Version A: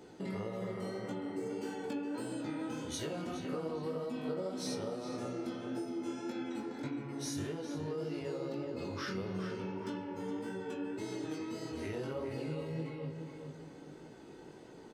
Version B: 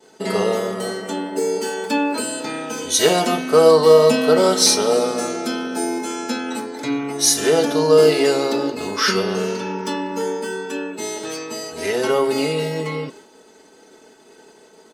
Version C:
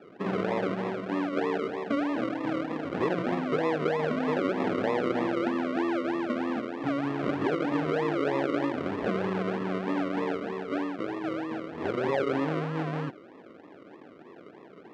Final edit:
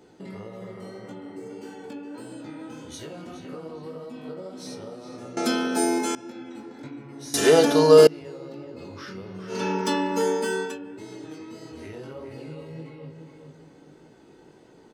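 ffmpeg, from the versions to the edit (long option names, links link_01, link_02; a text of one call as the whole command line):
ffmpeg -i take0.wav -i take1.wav -filter_complex "[1:a]asplit=3[link_01][link_02][link_03];[0:a]asplit=4[link_04][link_05][link_06][link_07];[link_04]atrim=end=5.372[link_08];[link_01]atrim=start=5.368:end=6.152[link_09];[link_05]atrim=start=6.148:end=7.342[link_10];[link_02]atrim=start=7.338:end=8.072[link_11];[link_06]atrim=start=8.068:end=9.63[link_12];[link_03]atrim=start=9.47:end=10.79[link_13];[link_07]atrim=start=10.63[link_14];[link_08][link_09]acrossfade=duration=0.004:curve1=hsin:curve2=hsin[link_15];[link_15][link_10]acrossfade=duration=0.004:curve1=hsin:curve2=hsin[link_16];[link_16][link_11]acrossfade=duration=0.004:curve1=hsin:curve2=hsin[link_17];[link_17][link_12]acrossfade=duration=0.004:curve1=hsin:curve2=hsin[link_18];[link_18][link_13]acrossfade=duration=0.16:curve1=tri:curve2=tri[link_19];[link_19][link_14]acrossfade=duration=0.16:curve1=tri:curve2=tri" out.wav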